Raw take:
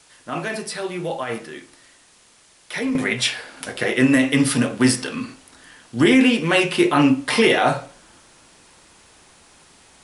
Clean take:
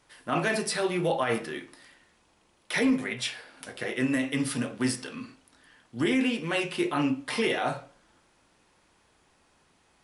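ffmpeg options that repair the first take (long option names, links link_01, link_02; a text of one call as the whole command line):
ffmpeg -i in.wav -af "agate=range=-21dB:threshold=-44dB,asetnsamples=nb_out_samples=441:pad=0,asendcmd='2.95 volume volume -11dB',volume=0dB" out.wav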